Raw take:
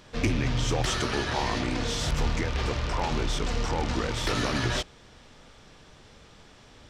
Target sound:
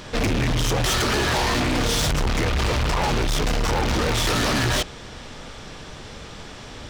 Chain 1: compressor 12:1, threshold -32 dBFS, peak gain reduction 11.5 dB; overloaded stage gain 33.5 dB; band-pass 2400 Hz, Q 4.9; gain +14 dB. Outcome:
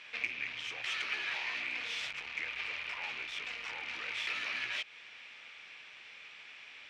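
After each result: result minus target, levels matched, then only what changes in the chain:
compressor: peak gain reduction +8 dB; 2000 Hz band +6.0 dB
change: compressor 12:1, threshold -23.5 dBFS, peak gain reduction 4 dB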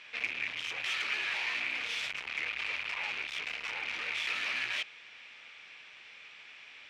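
2000 Hz band +6.0 dB
remove: band-pass 2400 Hz, Q 4.9

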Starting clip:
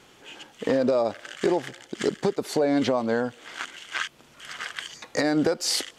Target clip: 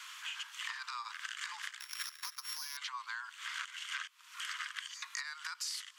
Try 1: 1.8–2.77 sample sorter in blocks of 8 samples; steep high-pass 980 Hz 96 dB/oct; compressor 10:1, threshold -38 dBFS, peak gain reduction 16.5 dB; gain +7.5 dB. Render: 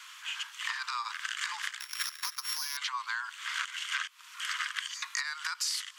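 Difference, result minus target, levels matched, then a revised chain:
compressor: peak gain reduction -7 dB
1.8–2.77 sample sorter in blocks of 8 samples; steep high-pass 980 Hz 96 dB/oct; compressor 10:1, threshold -46 dBFS, peak gain reduction 23.5 dB; gain +7.5 dB

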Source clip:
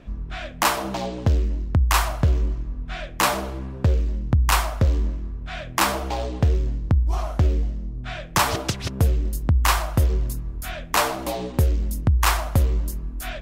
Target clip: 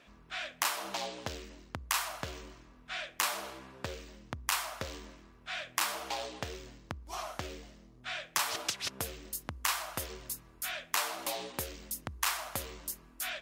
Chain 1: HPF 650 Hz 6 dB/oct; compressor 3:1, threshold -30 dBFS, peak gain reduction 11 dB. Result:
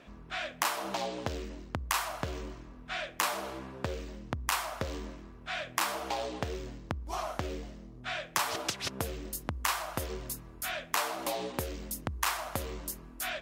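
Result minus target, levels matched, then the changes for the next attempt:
500 Hz band +4.5 dB
change: HPF 1900 Hz 6 dB/oct

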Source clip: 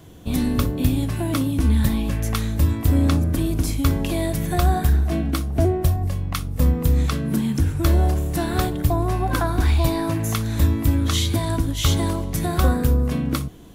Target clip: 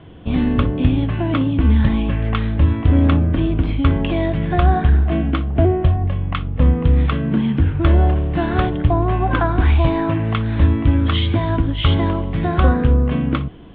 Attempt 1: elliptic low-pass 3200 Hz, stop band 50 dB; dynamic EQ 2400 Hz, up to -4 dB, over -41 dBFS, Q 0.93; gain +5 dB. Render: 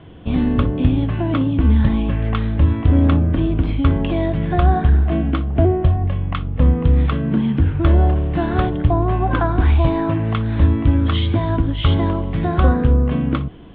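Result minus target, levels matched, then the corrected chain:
2000 Hz band -2.5 dB
elliptic low-pass 3200 Hz, stop band 50 dB; gain +5 dB

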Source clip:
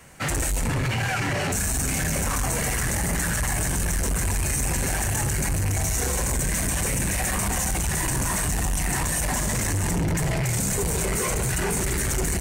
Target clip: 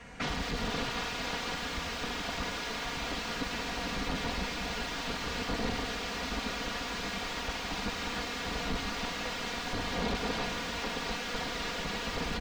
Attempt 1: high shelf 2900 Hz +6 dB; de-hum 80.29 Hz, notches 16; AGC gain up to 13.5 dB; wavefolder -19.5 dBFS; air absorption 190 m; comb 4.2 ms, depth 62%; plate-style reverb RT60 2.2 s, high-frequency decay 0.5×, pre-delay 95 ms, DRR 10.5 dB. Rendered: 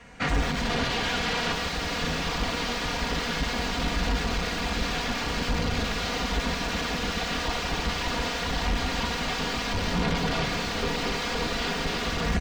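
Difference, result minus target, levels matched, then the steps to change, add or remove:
wavefolder: distortion -9 dB
change: wavefolder -25.5 dBFS

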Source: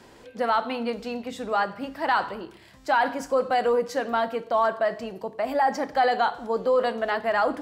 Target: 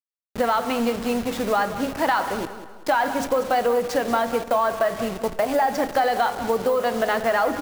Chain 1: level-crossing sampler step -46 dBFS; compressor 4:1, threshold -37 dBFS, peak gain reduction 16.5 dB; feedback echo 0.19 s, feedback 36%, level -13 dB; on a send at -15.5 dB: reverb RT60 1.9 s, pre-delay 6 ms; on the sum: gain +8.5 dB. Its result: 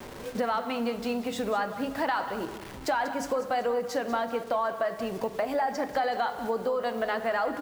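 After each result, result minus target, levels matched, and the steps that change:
level-crossing sampler: distortion -12 dB; compressor: peak gain reduction +7 dB
change: level-crossing sampler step -35 dBFS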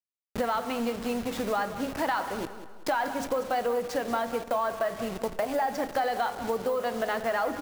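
compressor: peak gain reduction +7 dB
change: compressor 4:1, threshold -27.5 dBFS, peak gain reduction 9 dB

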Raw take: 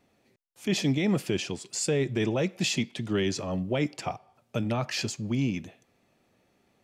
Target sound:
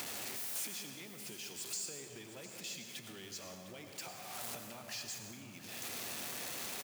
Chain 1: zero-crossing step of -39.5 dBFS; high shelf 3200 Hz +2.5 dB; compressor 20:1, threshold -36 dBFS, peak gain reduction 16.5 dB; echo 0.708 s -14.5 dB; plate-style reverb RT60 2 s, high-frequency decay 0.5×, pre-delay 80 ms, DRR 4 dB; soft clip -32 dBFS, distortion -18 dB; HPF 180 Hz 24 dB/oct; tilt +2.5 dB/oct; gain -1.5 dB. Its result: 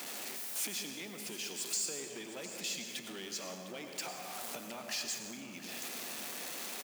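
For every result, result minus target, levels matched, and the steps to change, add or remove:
compressor: peak gain reduction -8 dB; 125 Hz band -5.0 dB; zero-crossing step: distortion -6 dB
change: compressor 20:1, threshold -44 dBFS, peak gain reduction 24 dB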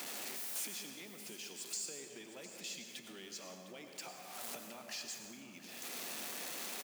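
125 Hz band -6.5 dB; zero-crossing step: distortion -6 dB
change: HPF 68 Hz 24 dB/oct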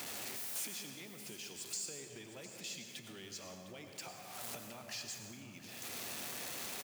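zero-crossing step: distortion -6 dB
change: zero-crossing step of -33 dBFS

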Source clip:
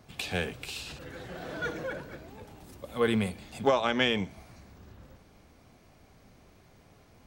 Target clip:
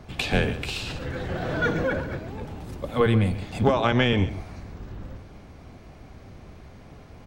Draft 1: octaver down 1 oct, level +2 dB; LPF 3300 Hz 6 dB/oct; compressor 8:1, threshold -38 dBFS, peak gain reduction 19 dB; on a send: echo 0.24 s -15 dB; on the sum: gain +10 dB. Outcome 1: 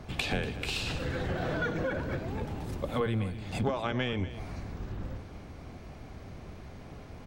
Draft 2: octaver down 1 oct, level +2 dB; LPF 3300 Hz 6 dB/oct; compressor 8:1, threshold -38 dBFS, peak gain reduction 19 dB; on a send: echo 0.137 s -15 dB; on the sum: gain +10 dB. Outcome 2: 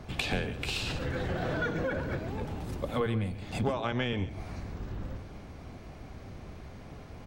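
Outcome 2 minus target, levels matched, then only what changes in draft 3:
compressor: peak gain reduction +10 dB
change: compressor 8:1, threshold -26.5 dBFS, peak gain reduction 9 dB

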